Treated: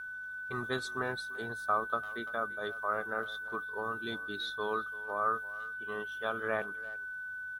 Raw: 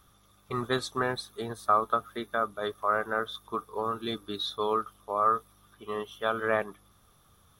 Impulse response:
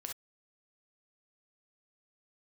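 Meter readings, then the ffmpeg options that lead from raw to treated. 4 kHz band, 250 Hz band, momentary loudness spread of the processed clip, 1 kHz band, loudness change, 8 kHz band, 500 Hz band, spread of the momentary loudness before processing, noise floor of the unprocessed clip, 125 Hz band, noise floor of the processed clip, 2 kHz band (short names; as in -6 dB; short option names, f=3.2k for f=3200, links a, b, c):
-6.5 dB, -6.5 dB, 7 LU, -6.5 dB, -5.0 dB, -6.5 dB, -6.5 dB, 10 LU, -63 dBFS, -6.5 dB, -42 dBFS, +3.0 dB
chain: -filter_complex "[0:a]aeval=exprs='val(0)+0.0224*sin(2*PI*1500*n/s)':c=same,asplit=2[a][b];[b]adelay=340,highpass=300,lowpass=3.4k,asoftclip=type=hard:threshold=-19dB,volume=-17dB[c];[a][c]amix=inputs=2:normalize=0,volume=-6.5dB"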